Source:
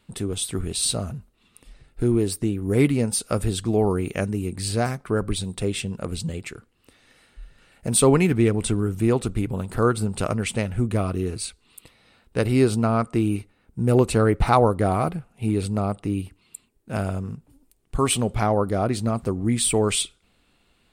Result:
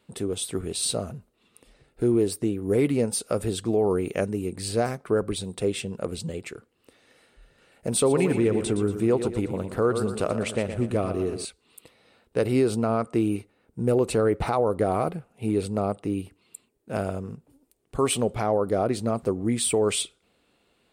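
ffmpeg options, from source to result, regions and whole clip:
-filter_complex "[0:a]asettb=1/sr,asplit=3[s0][s1][s2];[s0]atrim=end=7.934[s3];[s1]atrim=start=7.93:end=11.45,asetpts=PTS-STARTPTS,afade=t=in:d=0.004:c=qsin,afade=t=out:st=3.516:d=0.004:c=qsin,highshelf=f=10000:g=-6,aecho=1:1:117|234|351|468|585:0.299|0.146|0.0717|0.0351|0.0172,atrim=end_sample=155232[s4];[s2]atrim=start=11.446[s5];[s3][s4]acrossfade=d=0.004:c1=hsin:c2=qsin[s6];[s6][s5]acrossfade=d=0.004:c1=qsin:c2=hsin,highpass=f=110:p=1,equalizer=f=480:t=o:w=1.2:g=7,alimiter=limit=0.335:level=0:latency=1:release=56,volume=0.668"

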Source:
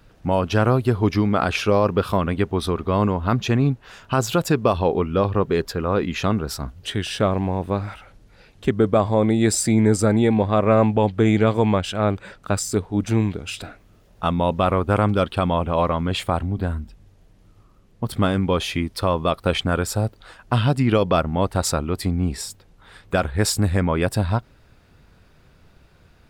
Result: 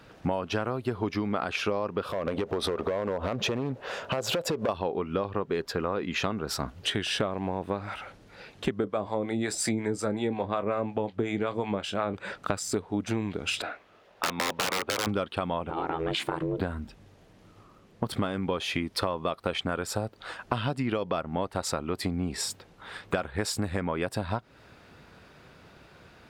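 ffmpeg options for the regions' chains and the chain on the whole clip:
-filter_complex "[0:a]asettb=1/sr,asplit=3[s0][s1][s2];[s0]atrim=end=2.044[s3];[s1]atrim=start=2.04:end=4.69,asetpts=PTS-STARTPTS,afade=t=in:d=0.004:c=qsin,afade=t=out:st=2.646:d=0.004:c=qsin,equalizer=f=540:t=o:w=0.81:g=13.5,acompressor=threshold=0.0794:ratio=8:attack=3.2:release=140:knee=1:detection=peak,asoftclip=type=hard:threshold=0.0794[s4];[s2]atrim=start=4.686[s5];[s3][s4]acrossfade=d=0.004:c1=hsin:c2=qsin[s6];[s6][s5]acrossfade=d=0.004:c1=qsin:c2=hsin,asettb=1/sr,asplit=3[s7][s8][s9];[s7]atrim=end=8.844[s10];[s8]atrim=start=8.84:end=12.14,asetpts=PTS-STARTPTS,afade=t=in:d=0.004:c=qsin,afade=t=out:st=3.296:d=0.004:c=qsin,acrossover=split=590[s11][s12];[s11]aeval=exprs='val(0)*(1-0.7/2+0.7/2*cos(2*PI*5.5*n/s))':c=same[s13];[s12]aeval=exprs='val(0)*(1-0.7/2-0.7/2*cos(2*PI*5.5*n/s))':c=same[s14];[s13][s14]amix=inputs=2:normalize=0,asplit=2[s15][s16];[s16]adelay=25,volume=0.224[s17];[s15][s17]amix=inputs=2:normalize=0,atrim=end_sample=145530[s18];[s9]atrim=start=12.136[s19];[s10][s18]acrossfade=d=0.004:c1=hsin:c2=qsin[s20];[s20][s19]acrossfade=d=0.004:c1=qsin:c2=hsin,asettb=1/sr,asplit=3[s21][s22][s23];[s21]atrim=end=13.624[s24];[s22]atrim=start=13.62:end=15.07,asetpts=PTS-STARTPTS,afade=t=in:d=0.004:c=qsin,afade=t=out:st=1.446:d=0.004:c=qsin,acrossover=split=420 4300:gain=0.2 1 0.251[s25][s26][s27];[s25][s26][s27]amix=inputs=3:normalize=0,aeval=exprs='(mod(7.94*val(0)+1,2)-1)/7.94':c=same[s28];[s23]atrim=start=15.066[s29];[s24][s28]acrossfade=d=0.004:c1=hsin:c2=qsin[s30];[s30][s29]acrossfade=d=0.004:c1=qsin:c2=hsin,asettb=1/sr,asplit=3[s31][s32][s33];[s31]atrim=end=15.704[s34];[s32]atrim=start=15.7:end=16.6,asetpts=PTS-STARTPTS,afade=t=in:d=0.004:c=qsin,afade=t=out:st=0.896:d=0.004:c=qsin,acompressor=threshold=0.0708:ratio=4:attack=3.2:release=140:knee=1:detection=peak,aeval=exprs='val(0)*sin(2*PI*240*n/s)':c=same[s35];[s33]atrim=start=16.596[s36];[s34][s35]acrossfade=d=0.004:c1=hsin:c2=qsin[s37];[s37][s36]acrossfade=d=0.004:c1=qsin:c2=hsin,highpass=f=270:p=1,highshelf=f=6900:g=-9,acompressor=threshold=0.0282:ratio=12,volume=2"

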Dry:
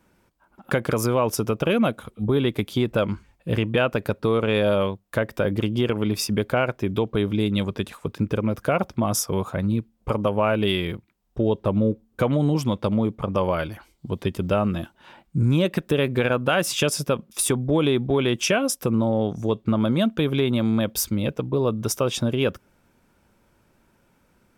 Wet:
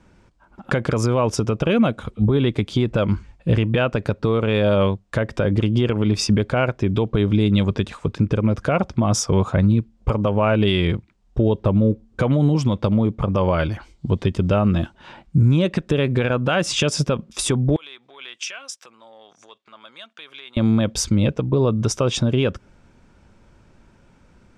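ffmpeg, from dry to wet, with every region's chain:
-filter_complex "[0:a]asettb=1/sr,asplit=3[s0][s1][s2];[s0]atrim=end=17.764[s3];[s1]atrim=start=17.76:end=20.57,asetpts=PTS-STARTPTS,afade=t=in:d=0.004:c=qsin,afade=t=out:st=2.806:d=0.004:c=qsin,agate=range=0.355:threshold=0.0224:ratio=16:release=100:detection=peak,acompressor=threshold=0.0282:ratio=5:attack=3.2:release=140:knee=1:detection=peak,highpass=1400[s4];[s2]atrim=start=20.566[s5];[s3][s4]acrossfade=d=0.004:c1=hsin:c2=qsin[s6];[s6][s5]acrossfade=d=0.004:c1=qsin:c2=hsin,lowpass=f=7700:w=0.5412,lowpass=f=7700:w=1.3066,lowshelf=f=130:g=9.5,alimiter=limit=0.188:level=0:latency=1:release=173,volume=1.88"

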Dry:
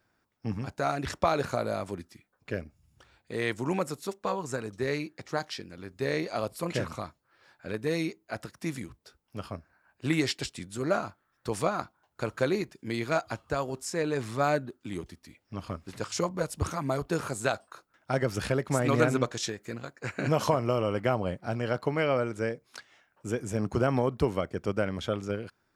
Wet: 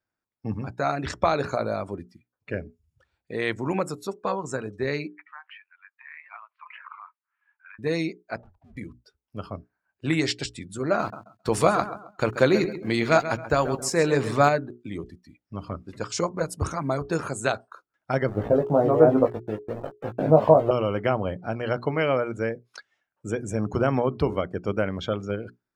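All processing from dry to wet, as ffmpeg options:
-filter_complex "[0:a]asettb=1/sr,asplit=3[s0][s1][s2];[s0]atrim=end=5.074[s3];[s1]atrim=start=5.07:end=7.79,asetpts=PTS-STARTPTS,afade=t=in:d=0.004:c=qsin,afade=t=out:st=2.716:d=0.004:c=qsin,acompressor=threshold=0.0224:ratio=6:attack=3.2:release=140:knee=1:detection=peak,asuperpass=centerf=1600:order=8:qfactor=0.86[s4];[s2]atrim=start=7.786[s5];[s3][s4]acrossfade=d=0.004:c1=hsin:c2=qsin[s6];[s6][s5]acrossfade=d=0.004:c1=qsin:c2=hsin,asettb=1/sr,asplit=3[s7][s8][s9];[s7]atrim=end=8.364[s10];[s8]atrim=start=8.36:end=8.77,asetpts=PTS-STARTPTS,afade=t=in:d=0.004:c=qsin,afade=t=out:st=0.406:d=0.004:c=qsin,lowpass=f=870:t=q:w=3.8,aeval=exprs='(tanh(398*val(0)+0.4)-tanh(0.4))/398':c=same,afreqshift=-91[s11];[s9]atrim=start=8.766[s12];[s10][s11]acrossfade=d=0.004:c1=hsin:c2=qsin[s13];[s13][s12]acrossfade=d=0.004:c1=qsin:c2=hsin,asettb=1/sr,asplit=3[s14][s15][s16];[s14]atrim=end=10.994[s17];[s15]atrim=start=10.99:end=14.49,asetpts=PTS-STARTPTS,afade=t=in:d=0.004:c=qsin,afade=t=out:st=3.496:d=0.004:c=qsin,acontrast=22,aeval=exprs='val(0)*gte(abs(val(0)),0.0112)':c=same,aecho=1:1:134|268|402:0.251|0.0829|0.0274,atrim=end_sample=154350[s18];[s16]atrim=start=14.486[s19];[s17][s18]acrossfade=d=0.004:c1=hsin:c2=qsin[s20];[s20][s19]acrossfade=d=0.004:c1=qsin:c2=hsin,asettb=1/sr,asplit=3[s21][s22][s23];[s21]atrim=end=18.294[s24];[s22]atrim=start=18.29:end=20.71,asetpts=PTS-STARTPTS,afade=t=in:d=0.004:c=qsin,afade=t=out:st=2.416:d=0.004:c=qsin,lowpass=f=700:t=q:w=2.2,aeval=exprs='val(0)*gte(abs(val(0)),0.0126)':c=same,asplit=2[s25][s26];[s26]adelay=19,volume=0.668[s27];[s25][s27]amix=inputs=2:normalize=0,atrim=end_sample=106722[s28];[s23]atrim=start=20.706[s29];[s24][s28]acrossfade=d=0.004:c1=hsin:c2=qsin[s30];[s30][s29]acrossfade=d=0.004:c1=qsin:c2=hsin,bandreject=f=60:t=h:w=6,bandreject=f=120:t=h:w=6,bandreject=f=180:t=h:w=6,bandreject=f=240:t=h:w=6,bandreject=f=300:t=h:w=6,bandreject=f=360:t=h:w=6,bandreject=f=420:t=h:w=6,afftdn=nr=18:nf=-47,volume=1.5"

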